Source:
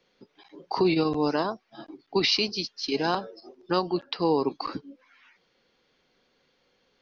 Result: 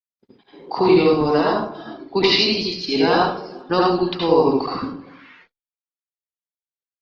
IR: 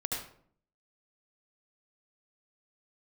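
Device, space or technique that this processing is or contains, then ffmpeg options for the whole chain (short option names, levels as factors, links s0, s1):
speakerphone in a meeting room: -filter_complex "[0:a]lowpass=f=5000:w=0.5412,lowpass=f=5000:w=1.3066[s0];[1:a]atrim=start_sample=2205[s1];[s0][s1]afir=irnorm=-1:irlink=0,asplit=2[s2][s3];[s3]adelay=390,highpass=300,lowpass=3400,asoftclip=type=hard:threshold=0.168,volume=0.0447[s4];[s2][s4]amix=inputs=2:normalize=0,dynaudnorm=f=100:g=9:m=2.99,agate=range=0.00355:threshold=0.00447:ratio=16:detection=peak,volume=0.794" -ar 48000 -c:a libopus -b:a 20k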